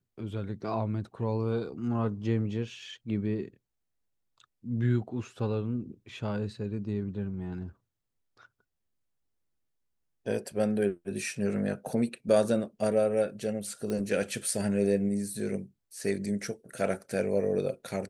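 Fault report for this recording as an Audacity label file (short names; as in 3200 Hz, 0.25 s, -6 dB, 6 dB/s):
13.900000	13.900000	pop -21 dBFS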